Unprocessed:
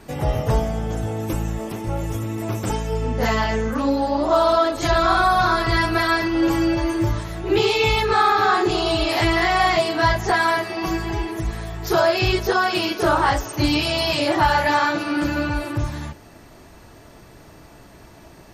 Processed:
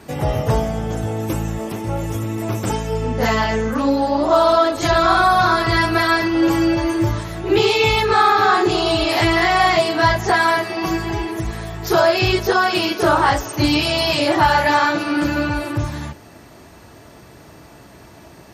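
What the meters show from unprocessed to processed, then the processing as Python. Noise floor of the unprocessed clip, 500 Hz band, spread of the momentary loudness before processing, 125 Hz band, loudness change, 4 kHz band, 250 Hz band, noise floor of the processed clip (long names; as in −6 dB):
−46 dBFS, +3.0 dB, 10 LU, +2.0 dB, +3.0 dB, +3.0 dB, +3.0 dB, −44 dBFS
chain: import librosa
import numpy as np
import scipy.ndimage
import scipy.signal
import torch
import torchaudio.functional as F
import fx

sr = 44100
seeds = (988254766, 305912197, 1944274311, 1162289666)

y = scipy.signal.sosfilt(scipy.signal.butter(2, 64.0, 'highpass', fs=sr, output='sos'), x)
y = F.gain(torch.from_numpy(y), 3.0).numpy()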